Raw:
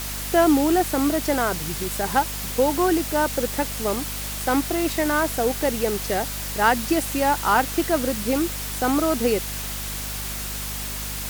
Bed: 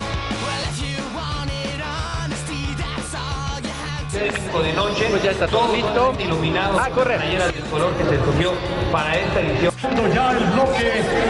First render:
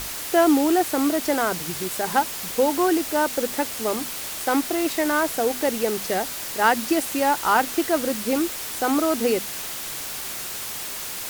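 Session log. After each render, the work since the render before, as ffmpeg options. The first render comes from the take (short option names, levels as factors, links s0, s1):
-af "bandreject=f=50:t=h:w=6,bandreject=f=100:t=h:w=6,bandreject=f=150:t=h:w=6,bandreject=f=200:t=h:w=6,bandreject=f=250:t=h:w=6"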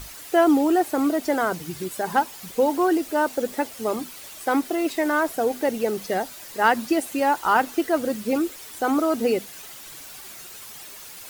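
-af "afftdn=nr=11:nf=-32"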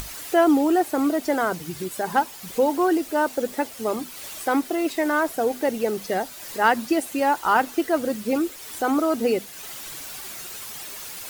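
-af "acompressor=mode=upward:threshold=0.0355:ratio=2.5"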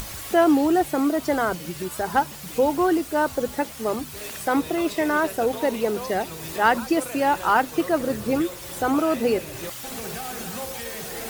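-filter_complex "[1:a]volume=0.133[s0];[0:a][s0]amix=inputs=2:normalize=0"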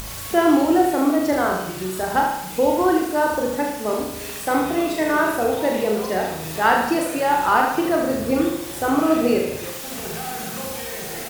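-filter_complex "[0:a]asplit=2[s0][s1];[s1]adelay=38,volume=0.631[s2];[s0][s2]amix=inputs=2:normalize=0,aecho=1:1:75|150|225|300|375|450:0.562|0.281|0.141|0.0703|0.0351|0.0176"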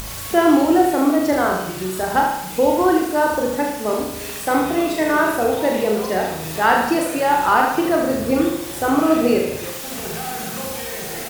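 -af "volume=1.26,alimiter=limit=0.708:level=0:latency=1"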